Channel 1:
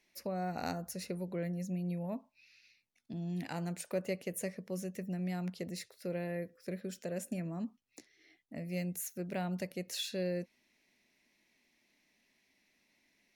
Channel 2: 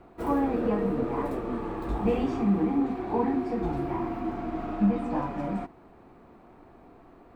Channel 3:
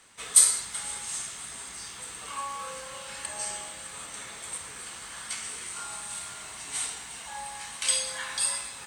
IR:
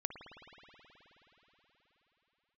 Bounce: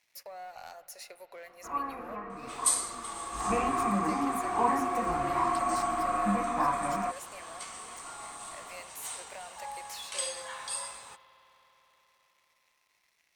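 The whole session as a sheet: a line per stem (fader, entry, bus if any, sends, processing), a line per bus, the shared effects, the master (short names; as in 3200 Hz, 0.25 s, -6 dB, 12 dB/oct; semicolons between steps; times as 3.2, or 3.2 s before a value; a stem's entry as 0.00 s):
-5.0 dB, 0.00 s, send -6.5 dB, HPF 650 Hz 24 dB/oct; compressor 2:1, threshold -58 dBFS, peak gain reduction 13 dB; sample leveller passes 3
3.3 s -19 dB -> 3.51 s -7.5 dB, 1.45 s, no send, band shelf 1600 Hz +13.5 dB; small resonant body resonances 720/1100 Hz, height 14 dB, ringing for 45 ms
-11.5 dB, 2.30 s, send -7 dB, band shelf 730 Hz +8 dB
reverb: on, RT60 4.6 s, pre-delay 53 ms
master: dry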